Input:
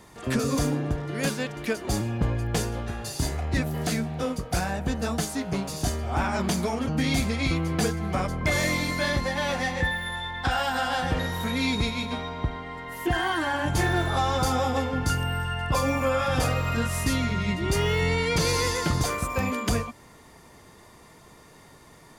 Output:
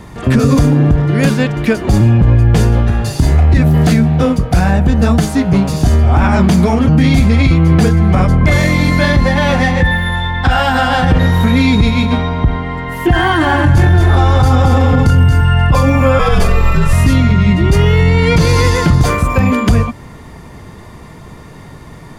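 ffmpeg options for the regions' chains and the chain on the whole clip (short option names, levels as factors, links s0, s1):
-filter_complex "[0:a]asettb=1/sr,asplit=3[s0][s1][s2];[s0]atrim=end=13.184[s3];[s1]atrim=start=13.18:end=15.41,asetpts=PTS-STARTPTS,afade=t=in:d=0.004:c=qsin,afade=t=out:st=2.226:d=0.004:c=qsin,equalizer=f=100:w=1.4:g=5.5,aecho=1:1:227:0.562,atrim=end_sample=98343[s4];[s2]atrim=start=15.406[s5];[s3][s4]acrossfade=d=0.004:c1=hsin:c2=qsin[s6];[s6][s5]acrossfade=d=0.004:c1=qsin:c2=hsin,asettb=1/sr,asplit=3[s7][s8][s9];[s7]atrim=end=16.194[s10];[s8]atrim=start=16.19:end=16.93,asetpts=PTS-STARTPTS,afade=t=in:d=0.004:c=qsin,afade=t=out:st=0.736:d=0.004:c=qsin,equalizer=f=14000:t=o:w=2.5:g=3,afreqshift=-69[s11];[s9]atrim=start=16.926[s12];[s10][s11]acrossfade=d=0.004:c1=hsin:c2=qsin[s13];[s13][s12]acrossfade=d=0.004:c1=qsin:c2=hsin,bass=f=250:g=9,treble=f=4000:g=-7,alimiter=level_in=5.31:limit=0.891:release=50:level=0:latency=1,volume=0.891"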